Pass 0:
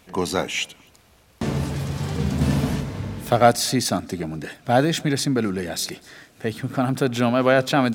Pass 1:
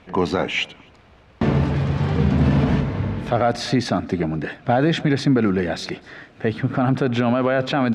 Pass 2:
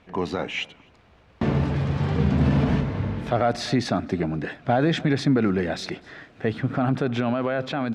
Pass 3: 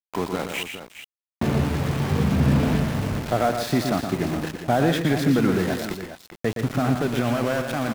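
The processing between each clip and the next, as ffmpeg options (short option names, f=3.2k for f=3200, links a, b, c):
-af "lowpass=2.7k,alimiter=level_in=13.5dB:limit=-1dB:release=50:level=0:latency=1,volume=-7.5dB"
-af "dynaudnorm=f=370:g=7:m=4dB,volume=-6.5dB"
-af "aeval=exprs='val(0)*gte(abs(val(0)),0.0376)':c=same,aecho=1:1:118|162|412:0.447|0.188|0.266"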